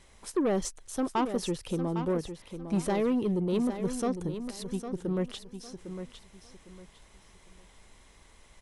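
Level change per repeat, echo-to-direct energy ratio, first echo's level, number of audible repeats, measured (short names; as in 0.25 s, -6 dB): -11.5 dB, -9.0 dB, -9.5 dB, 3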